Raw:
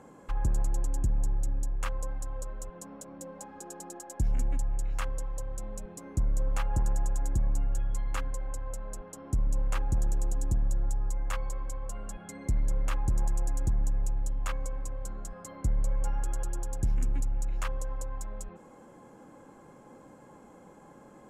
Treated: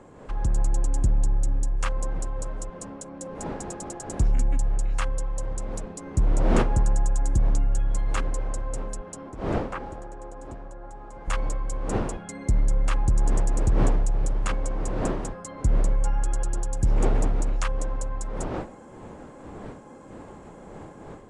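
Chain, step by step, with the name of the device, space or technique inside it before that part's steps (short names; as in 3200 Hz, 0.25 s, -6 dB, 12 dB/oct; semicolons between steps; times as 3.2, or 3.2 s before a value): 9.29–11.28 three-band isolator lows -21 dB, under 330 Hz, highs -18 dB, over 2100 Hz; smartphone video outdoors (wind noise 510 Hz -42 dBFS; AGC gain up to 6 dB; AAC 96 kbps 22050 Hz)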